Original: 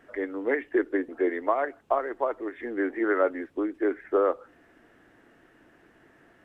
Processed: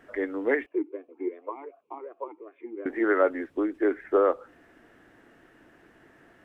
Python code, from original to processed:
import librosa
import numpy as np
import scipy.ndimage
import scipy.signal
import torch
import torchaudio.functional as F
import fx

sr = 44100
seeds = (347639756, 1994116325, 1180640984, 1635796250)

y = fx.vowel_sweep(x, sr, vowels='a-u', hz=2.7, at=(0.66, 2.86))
y = y * librosa.db_to_amplitude(1.5)